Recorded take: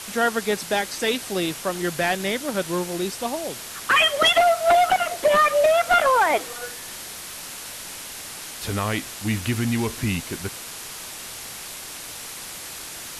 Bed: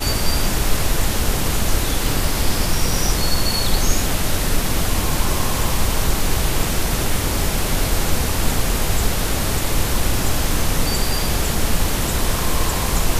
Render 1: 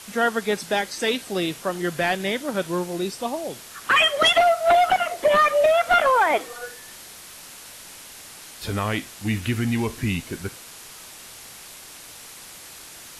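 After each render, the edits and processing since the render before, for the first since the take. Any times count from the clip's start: noise print and reduce 6 dB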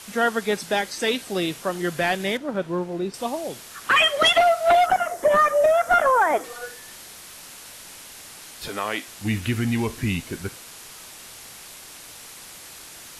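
2.37–3.14 LPF 1300 Hz 6 dB/oct; 4.86–6.44 band shelf 3200 Hz -9.5 dB 1.3 oct; 8.68–9.08 HPF 360 Hz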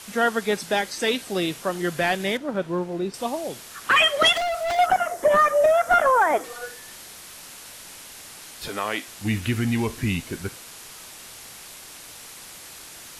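4.35–4.79 hard clip -23.5 dBFS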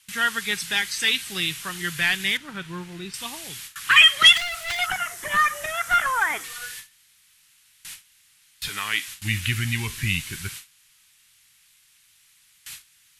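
gate with hold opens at -30 dBFS; EQ curve 150 Hz 0 dB, 240 Hz -11 dB, 400 Hz -13 dB, 580 Hz -22 dB, 900 Hz -8 dB, 1900 Hz +5 dB, 3100 Hz +7 dB, 5200 Hz +3 dB, 9000 Hz +5 dB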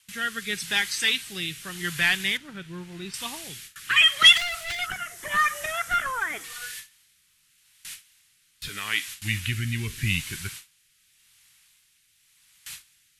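rotary speaker horn 0.85 Hz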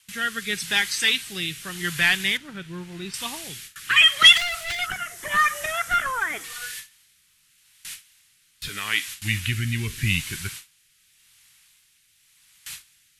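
gain +2.5 dB; limiter -2 dBFS, peak gain reduction 1 dB

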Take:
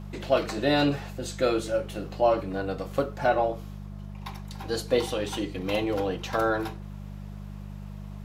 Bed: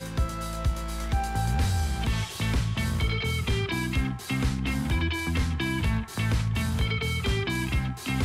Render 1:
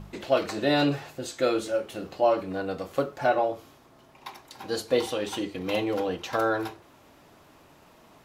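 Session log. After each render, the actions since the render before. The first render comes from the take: de-hum 50 Hz, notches 4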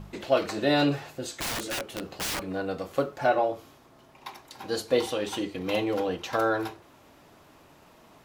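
1.31–2.45 wrapped overs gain 26 dB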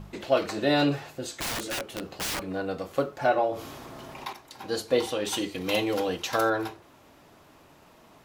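3.5–4.33 fast leveller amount 50%; 5.25–6.5 high shelf 3100 Hz +9.5 dB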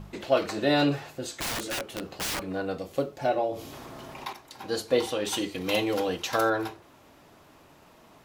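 2.78–3.73 bell 1300 Hz -9 dB 1.2 oct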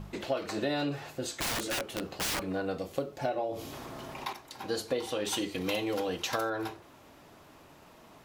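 compressor 6:1, threshold -28 dBFS, peak gain reduction 11 dB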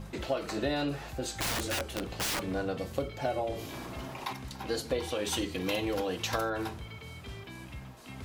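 add bed -17.5 dB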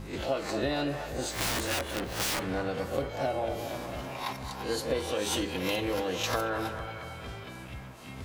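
spectral swells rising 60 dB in 0.38 s; band-limited delay 0.228 s, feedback 63%, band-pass 1000 Hz, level -7 dB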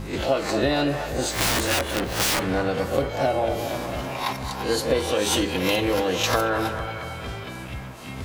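gain +8 dB

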